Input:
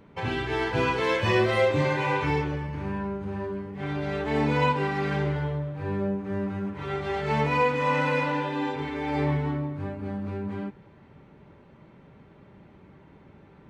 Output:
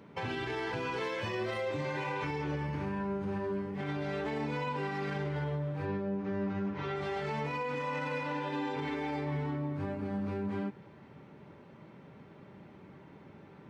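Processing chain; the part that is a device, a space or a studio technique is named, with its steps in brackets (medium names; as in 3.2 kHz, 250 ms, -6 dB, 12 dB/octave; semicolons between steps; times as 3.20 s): broadcast voice chain (high-pass 110 Hz 12 dB/octave; de-esser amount 85%; compression 3:1, threshold -30 dBFS, peak gain reduction 9 dB; peaking EQ 5.3 kHz +3.5 dB 0.35 oct; peak limiter -27 dBFS, peak gain reduction 7 dB); 5.85–6.96 s: low-pass 6.1 kHz 24 dB/octave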